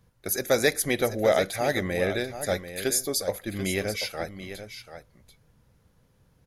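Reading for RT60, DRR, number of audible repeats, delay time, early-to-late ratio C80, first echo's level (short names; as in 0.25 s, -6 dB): none, none, 1, 0.738 s, none, -11.0 dB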